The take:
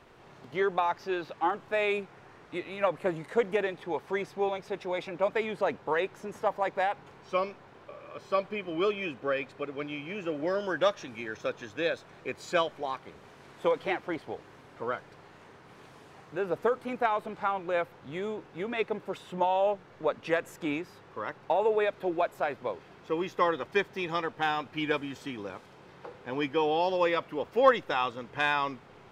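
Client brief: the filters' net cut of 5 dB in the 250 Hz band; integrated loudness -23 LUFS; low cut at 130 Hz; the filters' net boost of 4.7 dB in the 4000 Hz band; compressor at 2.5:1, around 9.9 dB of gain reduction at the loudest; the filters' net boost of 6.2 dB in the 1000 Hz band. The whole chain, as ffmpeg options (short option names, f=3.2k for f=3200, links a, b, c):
-af "highpass=130,equalizer=f=250:t=o:g=-8.5,equalizer=f=1k:t=o:g=8,equalizer=f=4k:t=o:g=5.5,acompressor=threshold=-26dB:ratio=2.5,volume=9dB"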